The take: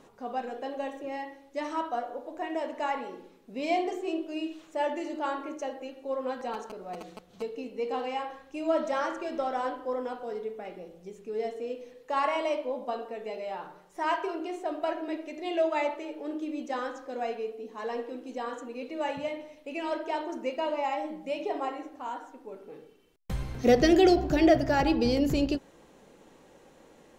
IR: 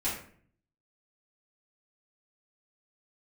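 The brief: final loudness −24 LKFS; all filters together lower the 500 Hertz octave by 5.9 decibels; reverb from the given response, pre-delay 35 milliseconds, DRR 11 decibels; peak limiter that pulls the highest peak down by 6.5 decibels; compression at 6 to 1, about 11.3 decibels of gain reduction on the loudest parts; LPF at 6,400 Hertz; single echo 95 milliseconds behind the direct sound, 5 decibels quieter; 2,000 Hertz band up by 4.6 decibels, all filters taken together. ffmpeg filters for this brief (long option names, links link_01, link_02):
-filter_complex "[0:a]lowpass=6400,equalizer=frequency=500:width_type=o:gain=-8.5,equalizer=frequency=2000:width_type=o:gain=6,acompressor=threshold=-32dB:ratio=6,alimiter=level_in=5dB:limit=-24dB:level=0:latency=1,volume=-5dB,aecho=1:1:95:0.562,asplit=2[link_01][link_02];[1:a]atrim=start_sample=2205,adelay=35[link_03];[link_02][link_03]afir=irnorm=-1:irlink=0,volume=-17.5dB[link_04];[link_01][link_04]amix=inputs=2:normalize=0,volume=14dB"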